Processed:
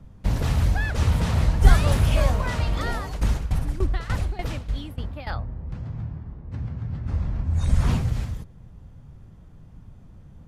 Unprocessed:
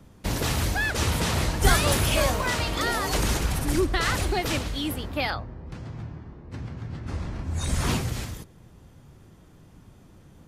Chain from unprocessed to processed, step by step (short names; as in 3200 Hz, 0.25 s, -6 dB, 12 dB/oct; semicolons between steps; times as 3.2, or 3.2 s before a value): tilt -2.5 dB/oct; 2.92–5.27 tremolo saw down 3.4 Hz, depth 85%; bell 340 Hz -7 dB 0.78 oct; gain -2.5 dB